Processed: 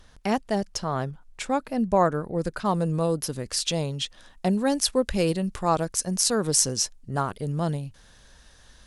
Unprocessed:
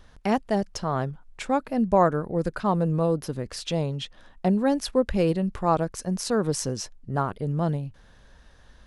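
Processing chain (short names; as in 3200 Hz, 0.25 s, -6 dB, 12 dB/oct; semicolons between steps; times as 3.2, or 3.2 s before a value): bell 9100 Hz +7 dB 2.5 oct, from 2.65 s +13.5 dB; gain -1.5 dB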